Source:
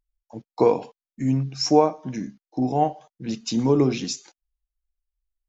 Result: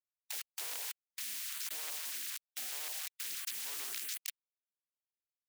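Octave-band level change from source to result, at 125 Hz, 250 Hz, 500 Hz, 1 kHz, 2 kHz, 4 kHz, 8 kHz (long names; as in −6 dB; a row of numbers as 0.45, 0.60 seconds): below −40 dB, below −40 dB, −39.0 dB, −29.0 dB, −2.5 dB, −8.5 dB, can't be measured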